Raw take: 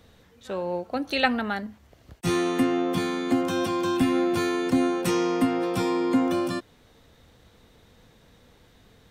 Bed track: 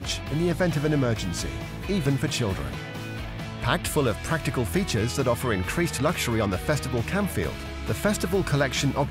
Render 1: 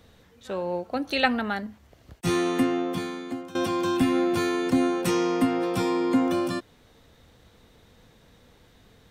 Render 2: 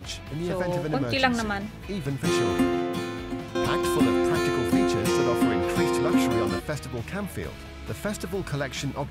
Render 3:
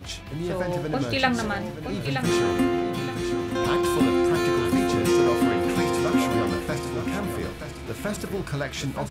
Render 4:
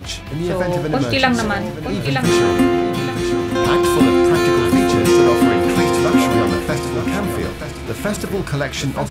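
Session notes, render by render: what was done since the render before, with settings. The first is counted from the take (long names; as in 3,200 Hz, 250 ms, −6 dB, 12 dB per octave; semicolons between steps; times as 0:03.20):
0:02.58–0:03.55: fade out, to −18 dB
mix in bed track −6 dB
double-tracking delay 37 ms −12 dB; repeating echo 923 ms, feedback 29%, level −8 dB
level +8 dB; brickwall limiter −1 dBFS, peak gain reduction 2.5 dB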